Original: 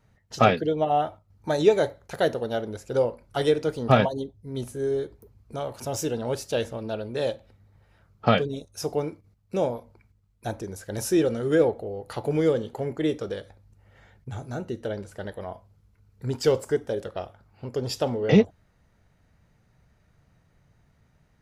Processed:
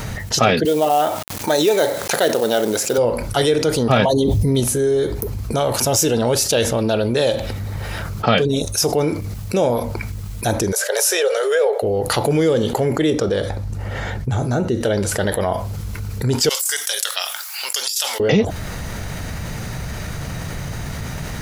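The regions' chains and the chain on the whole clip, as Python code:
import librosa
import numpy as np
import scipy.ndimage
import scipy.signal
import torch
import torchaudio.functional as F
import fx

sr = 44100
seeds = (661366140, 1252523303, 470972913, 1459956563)

y = fx.chain(x, sr, fx.highpass(hz=240.0, slope=12),
    fx.quant_companded(bits=6), at=(0.65, 2.98))
y = fx.chain(y, sr, fx.peak_eq(hz=1500.0, db=-13.0, octaves=0.2),
    fx.env_flatten(amount_pct=100), at=(4.06, 4.6))
y = fx.cheby_ripple_highpass(y, sr, hz=410.0, ripple_db=3, at=(10.71, 11.82), fade=0.02)
y = fx.dmg_tone(y, sr, hz=590.0, level_db=-56.0, at=(10.71, 11.82), fade=0.02)
y = fx.chain(y, sr, fx.lowpass(hz=3600.0, slope=6),
    fx.peak_eq(hz=2500.0, db=-4.0, octaves=1.5), at=(13.1, 14.81))
y = fx.chain(y, sr, fx.highpass(hz=1100.0, slope=12),
    fx.differentiator(),
    fx.over_compress(threshold_db=-49.0, ratio=-1.0), at=(16.49, 18.2))
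y = fx.high_shelf(y, sr, hz=3200.0, db=8.5)
y = fx.env_flatten(y, sr, amount_pct=70)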